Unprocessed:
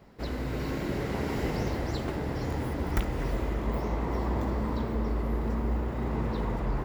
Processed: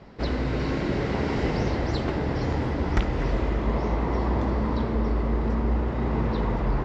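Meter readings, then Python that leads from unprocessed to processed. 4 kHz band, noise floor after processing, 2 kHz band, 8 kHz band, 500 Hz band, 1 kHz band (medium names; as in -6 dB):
+5.0 dB, -29 dBFS, +5.0 dB, no reading, +5.0 dB, +5.0 dB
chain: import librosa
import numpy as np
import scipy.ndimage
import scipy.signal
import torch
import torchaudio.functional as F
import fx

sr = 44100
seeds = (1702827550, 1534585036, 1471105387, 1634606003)

p1 = fx.rider(x, sr, range_db=10, speed_s=0.5)
p2 = x + (p1 * 10.0 ** (-2.0 / 20.0))
y = scipy.signal.sosfilt(scipy.signal.butter(4, 5800.0, 'lowpass', fs=sr, output='sos'), p2)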